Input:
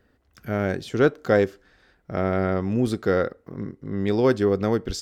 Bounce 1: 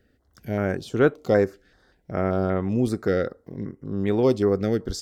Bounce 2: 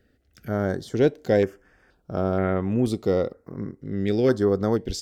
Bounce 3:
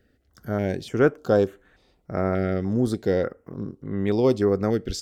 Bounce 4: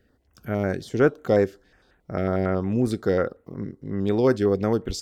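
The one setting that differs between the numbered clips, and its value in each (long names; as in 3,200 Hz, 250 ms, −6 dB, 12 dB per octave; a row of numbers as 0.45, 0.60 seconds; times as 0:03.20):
notch on a step sequencer, speed: 5.2, 2.1, 3.4, 11 Hertz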